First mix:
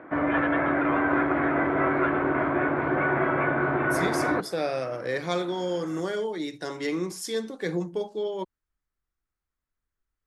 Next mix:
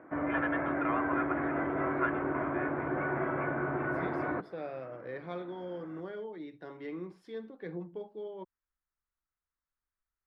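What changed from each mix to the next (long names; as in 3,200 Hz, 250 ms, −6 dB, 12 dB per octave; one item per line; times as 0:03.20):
second voice −10.5 dB
background −6.5 dB
master: add high-frequency loss of the air 440 metres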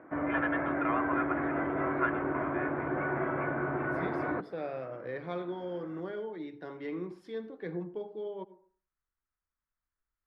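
reverb: on, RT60 0.45 s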